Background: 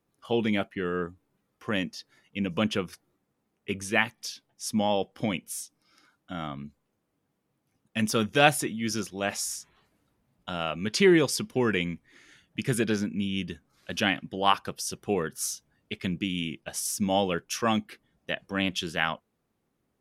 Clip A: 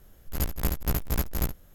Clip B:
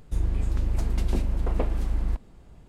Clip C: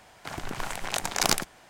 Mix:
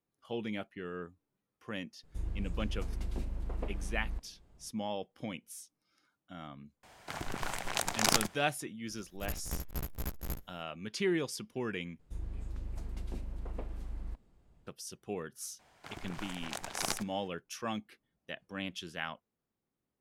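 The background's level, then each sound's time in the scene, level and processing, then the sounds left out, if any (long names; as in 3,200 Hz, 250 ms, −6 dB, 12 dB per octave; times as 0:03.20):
background −11.5 dB
0:02.03: mix in B −12 dB
0:06.83: mix in C −3.5 dB
0:08.88: mix in A −11 dB
0:11.99: overwrite with B −15 dB
0:15.59: mix in C −10.5 dB + high-shelf EQ 7,900 Hz −4 dB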